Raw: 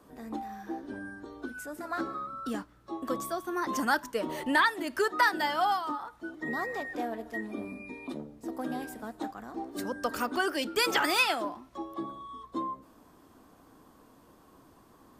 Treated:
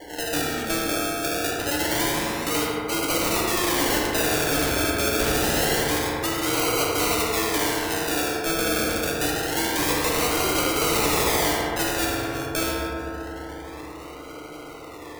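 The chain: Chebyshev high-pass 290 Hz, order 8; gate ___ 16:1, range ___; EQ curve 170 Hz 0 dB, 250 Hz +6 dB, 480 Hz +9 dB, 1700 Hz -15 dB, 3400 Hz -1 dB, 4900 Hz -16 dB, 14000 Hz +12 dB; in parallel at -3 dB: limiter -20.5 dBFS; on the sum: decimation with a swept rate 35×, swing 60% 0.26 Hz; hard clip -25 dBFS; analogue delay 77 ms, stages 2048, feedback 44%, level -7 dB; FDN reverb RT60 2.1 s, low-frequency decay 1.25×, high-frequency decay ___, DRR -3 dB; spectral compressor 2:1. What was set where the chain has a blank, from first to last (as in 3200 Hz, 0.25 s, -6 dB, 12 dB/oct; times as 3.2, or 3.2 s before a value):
-52 dBFS, -7 dB, 0.25×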